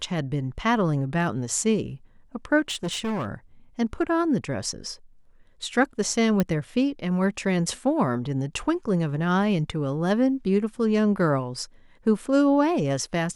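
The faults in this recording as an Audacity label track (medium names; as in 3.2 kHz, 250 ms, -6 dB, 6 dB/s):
2.680000	3.320000	clipped -24.5 dBFS
6.400000	6.400000	pop -10 dBFS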